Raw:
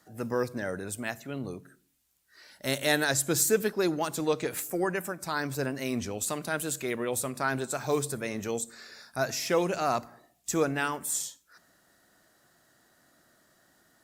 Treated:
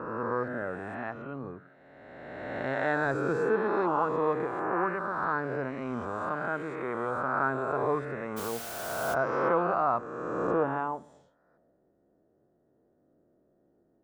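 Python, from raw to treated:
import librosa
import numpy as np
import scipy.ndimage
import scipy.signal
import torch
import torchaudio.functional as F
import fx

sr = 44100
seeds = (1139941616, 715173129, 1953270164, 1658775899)

y = fx.spec_swells(x, sr, rise_s=1.99)
y = fx.filter_sweep_lowpass(y, sr, from_hz=1200.0, to_hz=450.0, start_s=10.22, end_s=11.94, q=2.3)
y = fx.quant_dither(y, sr, seeds[0], bits=6, dither='triangular', at=(8.36, 9.13), fade=0.02)
y = F.gain(torch.from_numpy(y), -5.5).numpy()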